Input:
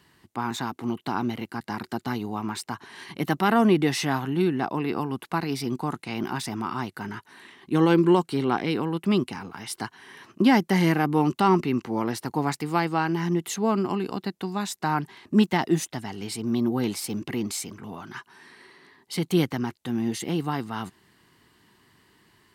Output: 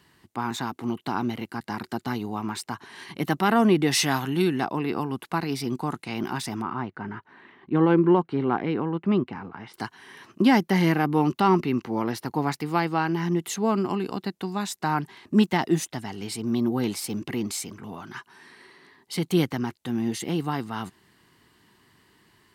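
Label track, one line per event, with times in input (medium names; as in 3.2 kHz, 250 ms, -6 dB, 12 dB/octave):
3.910000	4.640000	treble shelf 2.5 kHz +8.5 dB
6.620000	9.740000	low-pass 1.9 kHz
10.630000	13.360000	peaking EQ 8.1 kHz -6.5 dB 0.59 oct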